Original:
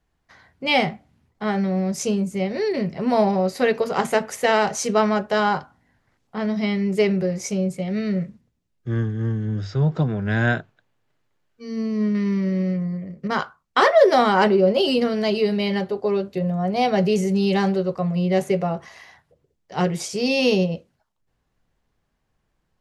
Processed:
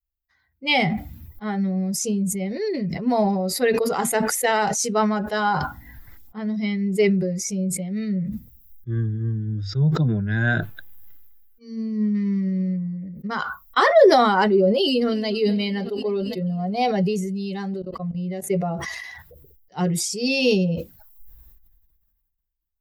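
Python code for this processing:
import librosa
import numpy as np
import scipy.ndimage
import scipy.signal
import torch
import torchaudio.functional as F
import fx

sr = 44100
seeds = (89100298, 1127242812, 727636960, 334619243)

y = fx.echo_throw(x, sr, start_s=14.84, length_s=0.51, ms=270, feedback_pct=80, wet_db=-14.0)
y = fx.level_steps(y, sr, step_db=24, at=(17.04, 18.44))
y = fx.bin_expand(y, sr, power=1.5)
y = fx.high_shelf(y, sr, hz=6400.0, db=6.0)
y = fx.sustainer(y, sr, db_per_s=33.0)
y = y * 10.0 ** (1.0 / 20.0)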